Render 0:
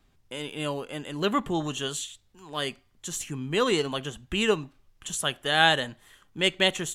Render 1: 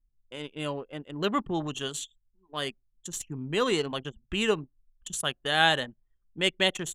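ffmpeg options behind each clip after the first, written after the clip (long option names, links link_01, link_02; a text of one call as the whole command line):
ffmpeg -i in.wav -af "anlmdn=6.31,volume=-2dB" out.wav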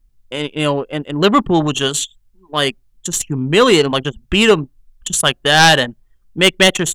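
ffmpeg -i in.wav -af "aeval=exprs='0.473*sin(PI/2*2.82*val(0)/0.473)':channel_layout=same,volume=3.5dB" out.wav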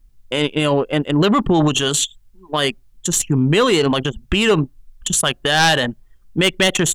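ffmpeg -i in.wav -af "alimiter=limit=-13dB:level=0:latency=1:release=40,volume=5dB" out.wav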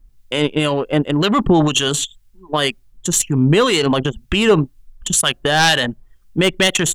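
ffmpeg -i in.wav -filter_complex "[0:a]acrossover=split=1400[link_01][link_02];[link_01]aeval=exprs='val(0)*(1-0.5/2+0.5/2*cos(2*PI*2*n/s))':channel_layout=same[link_03];[link_02]aeval=exprs='val(0)*(1-0.5/2-0.5/2*cos(2*PI*2*n/s))':channel_layout=same[link_04];[link_03][link_04]amix=inputs=2:normalize=0,volume=3dB" out.wav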